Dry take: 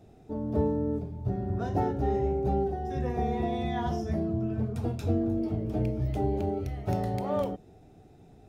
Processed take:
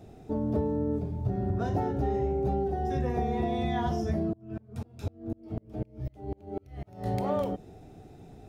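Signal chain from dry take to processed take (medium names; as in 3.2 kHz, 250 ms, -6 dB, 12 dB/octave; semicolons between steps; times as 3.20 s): compression, threshold -30 dBFS, peak gain reduction 9 dB; 4.33–7.06 s: sawtooth tremolo in dB swelling 4 Hz, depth 35 dB; trim +5 dB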